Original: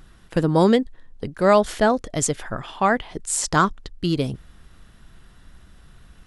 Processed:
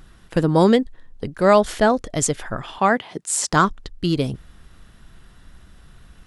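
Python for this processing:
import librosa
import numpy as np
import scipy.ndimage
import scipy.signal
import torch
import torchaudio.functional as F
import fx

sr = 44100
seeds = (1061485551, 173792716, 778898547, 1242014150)

y = fx.highpass(x, sr, hz=120.0, slope=24, at=(2.78, 3.53))
y = y * 10.0 ** (1.5 / 20.0)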